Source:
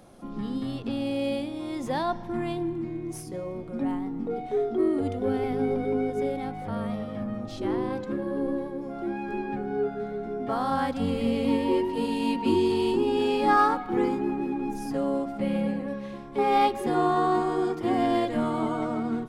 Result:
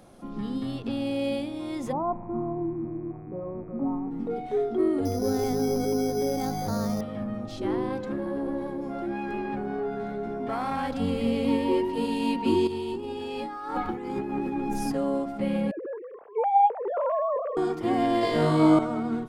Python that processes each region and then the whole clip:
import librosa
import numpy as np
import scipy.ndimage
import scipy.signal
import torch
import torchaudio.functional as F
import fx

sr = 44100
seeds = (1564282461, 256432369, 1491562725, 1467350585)

y = fx.cheby1_lowpass(x, sr, hz=1300.0, order=8, at=(1.91, 4.1), fade=0.02)
y = fx.dmg_buzz(y, sr, base_hz=100.0, harmonics=25, level_db=-58.0, tilt_db=-5, odd_only=False, at=(1.91, 4.1), fade=0.02)
y = fx.chain(y, sr, fx.air_absorb(metres=320.0),
    fx.resample_bad(factor=8, down='filtered', up='hold'),
    fx.env_flatten(amount_pct=50), at=(5.05, 7.01))
y = fx.chain(y, sr, fx.tube_stage(drive_db=19.0, bias=0.5),
    fx.hum_notches(base_hz=60, count=10),
    fx.env_flatten(amount_pct=50), at=(8.04, 10.97))
y = fx.chain(y, sr, fx.peak_eq(hz=77.0, db=11.5, octaves=0.31),
    fx.over_compress(threshold_db=-31.0, ratio=-1.0),
    fx.doubler(ms=13.0, db=-10.5), at=(12.67, 14.92))
y = fx.chain(y, sr, fx.sine_speech(),
    fx.lowpass(hz=1100.0, slope=12), at=(15.71, 17.57))
y = fx.chain(y, sr, fx.peak_eq(hz=4800.0, db=8.0, octaves=0.48),
    fx.room_flutter(wall_m=3.3, rt60_s=0.96), at=(18.21, 18.79))